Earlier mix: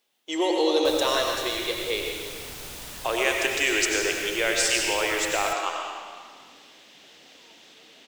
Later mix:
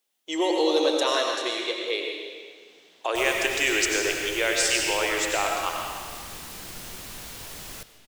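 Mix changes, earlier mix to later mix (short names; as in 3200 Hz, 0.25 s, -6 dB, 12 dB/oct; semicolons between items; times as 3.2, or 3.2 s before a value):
first sound -8.0 dB; second sound: entry +2.30 s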